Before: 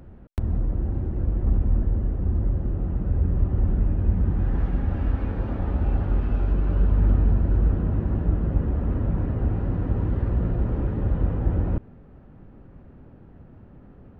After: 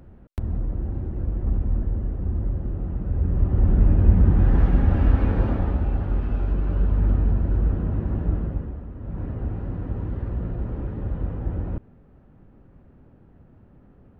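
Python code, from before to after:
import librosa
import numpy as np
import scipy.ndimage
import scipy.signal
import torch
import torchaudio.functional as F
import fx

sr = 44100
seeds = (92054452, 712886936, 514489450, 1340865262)

y = fx.gain(x, sr, db=fx.line((3.07, -2.0), (3.91, 6.0), (5.44, 6.0), (5.89, -1.0), (8.38, -1.0), (8.93, -13.5), (9.23, -4.5)))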